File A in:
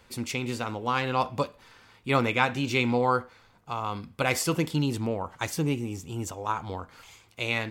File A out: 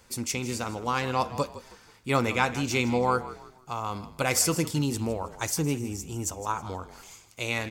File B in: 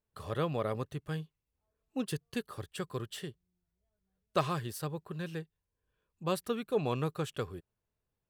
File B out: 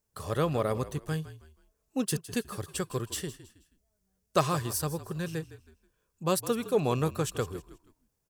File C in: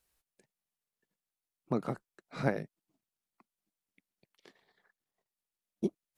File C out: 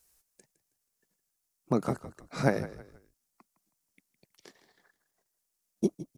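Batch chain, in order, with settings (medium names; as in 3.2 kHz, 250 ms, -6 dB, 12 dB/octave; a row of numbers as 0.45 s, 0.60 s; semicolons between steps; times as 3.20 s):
resonant high shelf 4.6 kHz +6.5 dB, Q 1.5; frequency-shifting echo 160 ms, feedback 34%, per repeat -41 Hz, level -15 dB; peak normalisation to -9 dBFS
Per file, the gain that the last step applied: -0.5 dB, +4.5 dB, +5.0 dB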